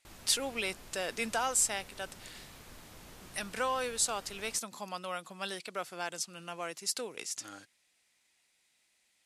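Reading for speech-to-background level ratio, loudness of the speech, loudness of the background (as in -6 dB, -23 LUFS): 17.5 dB, -34.5 LUFS, -52.0 LUFS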